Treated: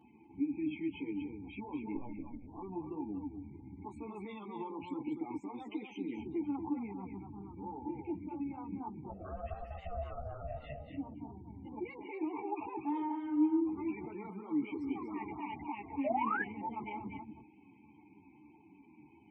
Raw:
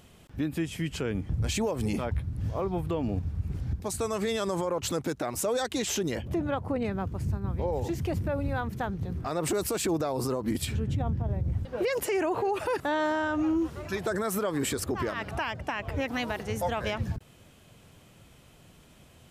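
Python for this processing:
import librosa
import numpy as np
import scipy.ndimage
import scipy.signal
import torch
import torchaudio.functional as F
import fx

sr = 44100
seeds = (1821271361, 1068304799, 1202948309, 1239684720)

p1 = fx.over_compress(x, sr, threshold_db=-36.0, ratio=-0.5)
p2 = x + (p1 * librosa.db_to_amplitude(2.0))
p3 = fx.vowel_filter(p2, sr, vowel='u')
p4 = fx.lpc_vocoder(p3, sr, seeds[0], excitation='pitch_kept', order=10, at=(1.95, 2.47))
p5 = fx.spec_topn(p4, sr, count=32)
p6 = fx.ring_mod(p5, sr, carrier_hz=370.0, at=(9.08, 10.89), fade=0.02)
p7 = p6 + fx.echo_single(p6, sr, ms=239, db=-6.5, dry=0)
p8 = fx.spec_paint(p7, sr, seeds[1], shape='rise', start_s=16.04, length_s=0.39, low_hz=560.0, high_hz=1800.0, level_db=-32.0)
p9 = fx.ensemble(p8, sr)
y = p9 * librosa.db_to_amplitude(1.0)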